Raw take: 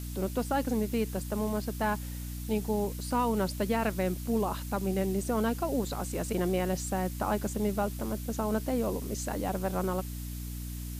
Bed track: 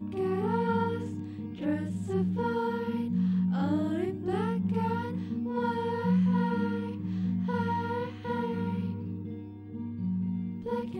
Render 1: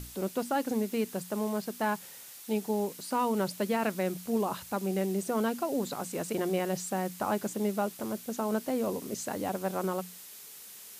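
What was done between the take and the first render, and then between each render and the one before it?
mains-hum notches 60/120/180/240/300 Hz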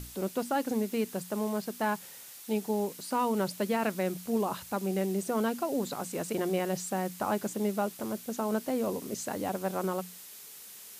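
no processing that can be heard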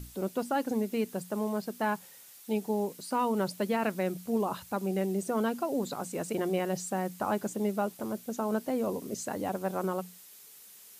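broadband denoise 6 dB, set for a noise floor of −48 dBFS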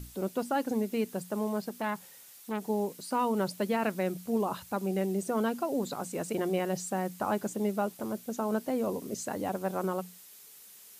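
0:01.69–0:02.68: saturating transformer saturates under 940 Hz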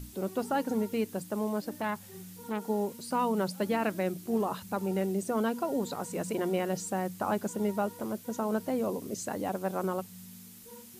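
mix in bed track −19 dB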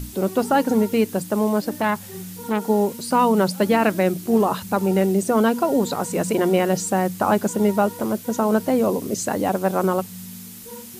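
level +11.5 dB

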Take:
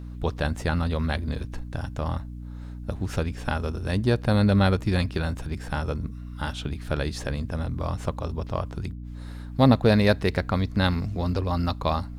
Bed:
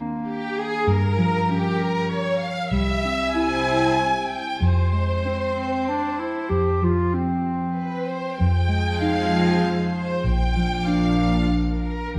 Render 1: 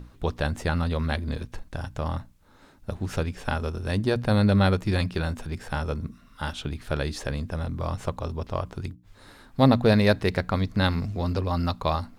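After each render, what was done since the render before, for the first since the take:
mains-hum notches 60/120/180/240/300 Hz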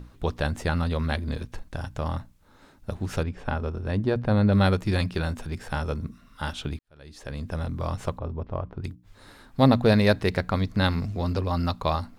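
0:03.23–0:04.53: low-pass filter 1,600 Hz 6 dB per octave
0:06.79–0:07.51: fade in quadratic
0:08.18–0:08.84: head-to-tape spacing loss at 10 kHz 41 dB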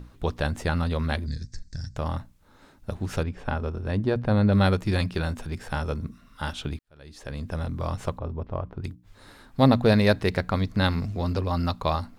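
0:01.26–0:01.96: drawn EQ curve 150 Hz 0 dB, 820 Hz −24 dB, 1,200 Hz −21 dB, 1,800 Hz −4 dB, 2,900 Hz −20 dB, 4,800 Hz +10 dB, 7,900 Hz +4 dB, 11,000 Hz −25 dB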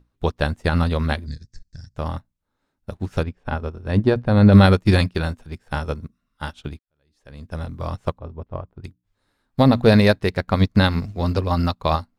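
boost into a limiter +13.5 dB
expander for the loud parts 2.5 to 1, over −29 dBFS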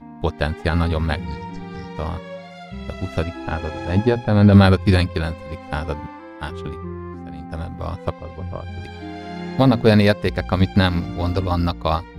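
mix in bed −11.5 dB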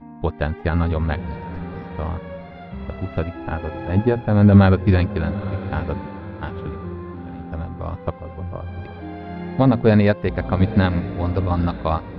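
high-frequency loss of the air 370 metres
feedback delay with all-pass diffusion 869 ms, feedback 41%, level −14 dB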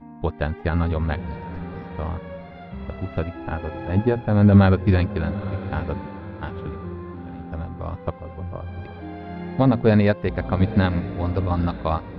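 level −2 dB

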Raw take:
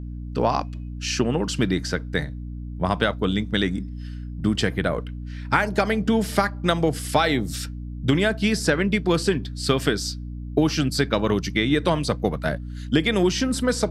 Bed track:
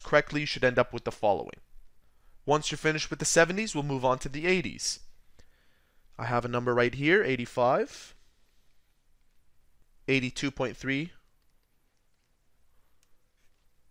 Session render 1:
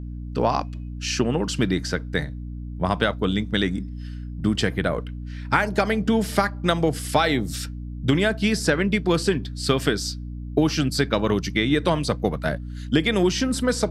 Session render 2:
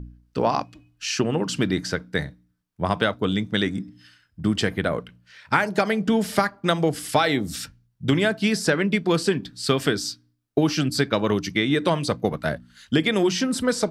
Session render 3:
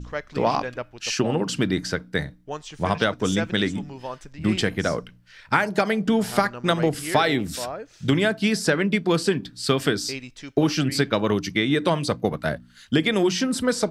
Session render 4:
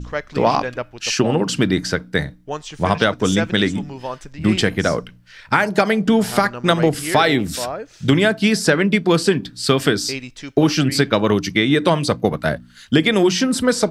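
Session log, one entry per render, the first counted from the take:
no processing that can be heard
hum removal 60 Hz, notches 5
mix in bed track −8 dB
level +5.5 dB; brickwall limiter −1 dBFS, peak gain reduction 2.5 dB

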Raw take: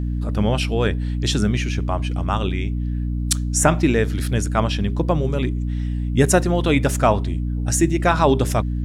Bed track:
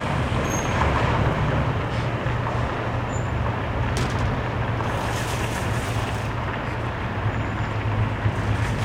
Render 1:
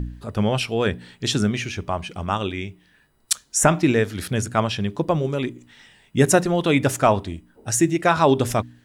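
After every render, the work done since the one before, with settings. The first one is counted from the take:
hum removal 60 Hz, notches 5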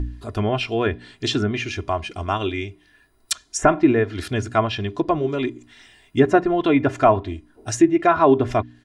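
treble cut that deepens with the level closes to 1,800 Hz, closed at −15 dBFS
comb filter 2.9 ms, depth 68%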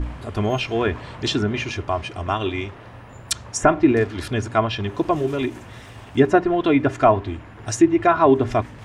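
mix in bed track −16 dB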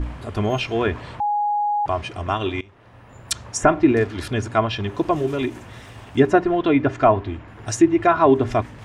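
0:01.20–0:01.86: beep over 829 Hz −18 dBFS
0:02.61–0:03.40: fade in linear, from −20 dB
0:06.59–0:07.48: high-frequency loss of the air 79 metres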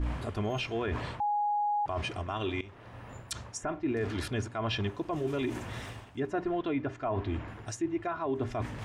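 reversed playback
downward compressor 8 to 1, threshold −28 dBFS, peak gain reduction 18.5 dB
reversed playback
brickwall limiter −23 dBFS, peak gain reduction 8.5 dB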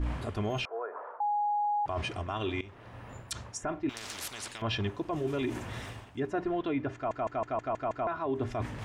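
0:00.65–0:01.65: Chebyshev band-pass filter 470–1,400 Hz, order 3
0:03.89–0:04.62: every bin compressed towards the loudest bin 10 to 1
0:06.95: stutter in place 0.16 s, 7 plays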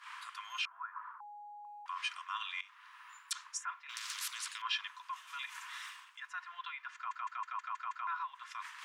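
Chebyshev high-pass filter 1,000 Hz, order 6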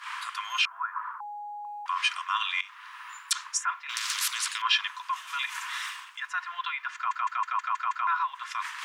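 level +11.5 dB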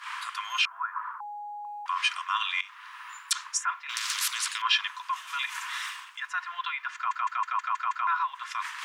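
no processing that can be heard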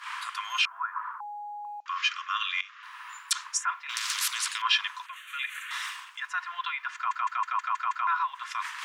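0:01.80–0:02.83: Chebyshev band-pass filter 1,100–7,100 Hz, order 5
0:05.06–0:05.71: phaser with its sweep stopped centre 2,200 Hz, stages 4

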